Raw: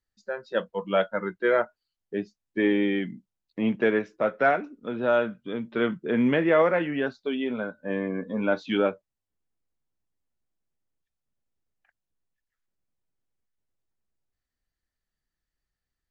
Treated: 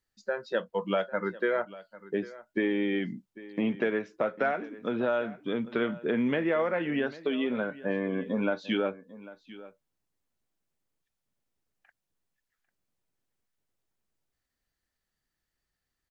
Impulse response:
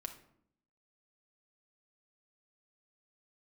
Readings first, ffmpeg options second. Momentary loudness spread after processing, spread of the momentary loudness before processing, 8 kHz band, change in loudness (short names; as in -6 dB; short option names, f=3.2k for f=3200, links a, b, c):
12 LU, 12 LU, n/a, -4.0 dB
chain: -af "lowshelf=f=84:g=-7.5,acompressor=threshold=-30dB:ratio=4,aecho=1:1:797:0.126,volume=4dB"